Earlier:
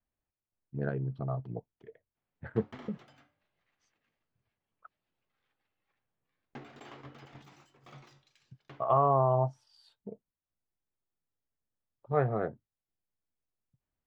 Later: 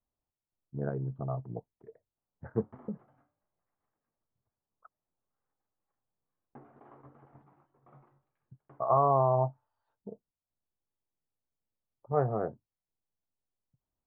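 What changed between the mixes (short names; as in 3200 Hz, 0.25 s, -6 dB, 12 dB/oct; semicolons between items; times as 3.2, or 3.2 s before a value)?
speech +5.0 dB; master: add ladder low-pass 1400 Hz, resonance 25%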